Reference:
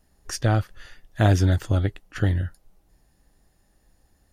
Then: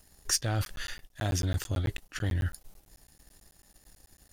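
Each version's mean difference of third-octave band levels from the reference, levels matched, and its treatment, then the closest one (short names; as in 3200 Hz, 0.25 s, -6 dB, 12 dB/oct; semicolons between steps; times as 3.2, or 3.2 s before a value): 7.0 dB: reverse; compressor 20:1, threshold -29 dBFS, peak gain reduction 16.5 dB; reverse; sample leveller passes 1; high shelf 2600 Hz +11 dB; crackling interface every 0.11 s, samples 512, zero, from 0.65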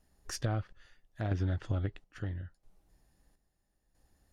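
3.0 dB: self-modulated delay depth 0.084 ms; treble ducked by the level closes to 3000 Hz, closed at -18 dBFS; chopper 0.76 Hz, depth 65%, duty 55%; compressor, threshold -22 dBFS, peak gain reduction 6.5 dB; gain -6.5 dB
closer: second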